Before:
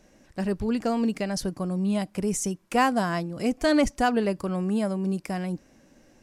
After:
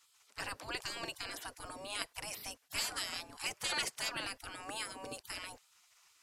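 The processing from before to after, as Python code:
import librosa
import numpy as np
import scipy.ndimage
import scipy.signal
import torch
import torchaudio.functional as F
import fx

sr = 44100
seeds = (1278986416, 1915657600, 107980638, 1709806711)

y = fx.spec_gate(x, sr, threshold_db=-25, keep='weak')
y = y * 10.0 ** (3.5 / 20.0)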